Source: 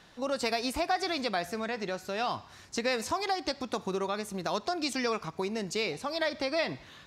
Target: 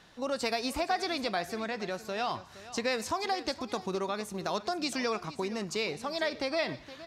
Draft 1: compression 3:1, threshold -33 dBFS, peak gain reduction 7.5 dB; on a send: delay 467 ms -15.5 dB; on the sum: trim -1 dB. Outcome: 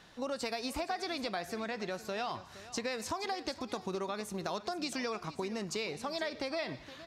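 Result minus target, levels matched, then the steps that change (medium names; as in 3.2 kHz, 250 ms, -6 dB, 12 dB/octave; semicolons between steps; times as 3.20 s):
compression: peak gain reduction +7.5 dB
remove: compression 3:1, threshold -33 dBFS, peak gain reduction 7.5 dB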